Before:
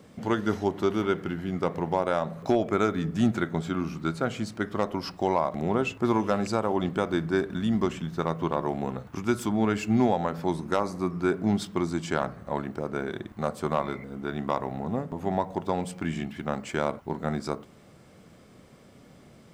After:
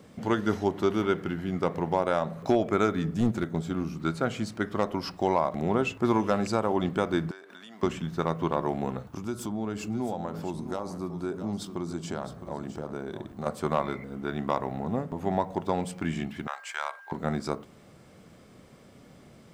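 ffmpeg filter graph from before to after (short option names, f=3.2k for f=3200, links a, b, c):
-filter_complex "[0:a]asettb=1/sr,asplit=3[a][b][c];[a]atrim=end=3.144[d];[b]atrim=start=3.14:end=4,asetpts=PTS-STARTPTS,afade=t=in:d=0.004:c=qsin,afade=t=out:st=0.856:d=0.004:c=qsin,equalizer=f=1.7k:t=o:w=2.6:g=-6.5,aeval=exprs='clip(val(0),-1,0.0531)':c=same[e];[c]atrim=start=3.996[f];[d][e]acrossfade=d=0.004:c1=hsin:c2=qsin[g];[g][f]acrossfade=d=0.004:c1=qsin:c2=hsin,asettb=1/sr,asplit=3[h][i][j];[h]atrim=end=7.314[k];[i]atrim=start=7.31:end=7.83,asetpts=PTS-STARTPTS,afade=t=in:d=0.004:c=qsin,afade=t=out:st=0.516:d=0.004:c=qsin,highpass=650,acompressor=threshold=-43dB:ratio=6:attack=3.2:release=140:knee=1:detection=peak[l];[j]atrim=start=7.826[m];[k][l]acrossfade=d=0.004:c1=hsin:c2=qsin[n];[n][m]acrossfade=d=0.004:c1=qsin:c2=hsin,asettb=1/sr,asplit=3[o][p][q];[o]atrim=end=9.064[r];[p]atrim=start=9.06:end=13.46,asetpts=PTS-STARTPTS,afade=t=in:d=0.004:c=qsin,afade=t=out:st=4.396:d=0.004:c=qsin,equalizer=f=2k:t=o:w=1.1:g=-8,acompressor=threshold=-33dB:ratio=2:attack=3.2:release=140:knee=1:detection=peak,aecho=1:1:661:0.266,atrim=end_sample=194040[s];[q]atrim=start=13.456[t];[r][s]acrossfade=d=0.004:c1=hsin:c2=qsin[u];[u][t]acrossfade=d=0.004:c1=qsin:c2=hsin,asettb=1/sr,asplit=3[v][w][x];[v]atrim=end=16.474[y];[w]atrim=start=16.47:end=17.12,asetpts=PTS-STARTPTS,afade=t=in:d=0.004:c=qsin,afade=t=out:st=0.646:d=0.004:c=qsin,highpass=f=860:w=0.5412,highpass=f=860:w=1.3066,aeval=exprs='val(0)+0.00447*sin(2*PI*1600*n/s)':c=same[z];[x]atrim=start=17.116[aa];[y][z]acrossfade=d=0.004:c1=hsin:c2=qsin[ab];[ab][aa]acrossfade=d=0.004:c1=qsin:c2=hsin"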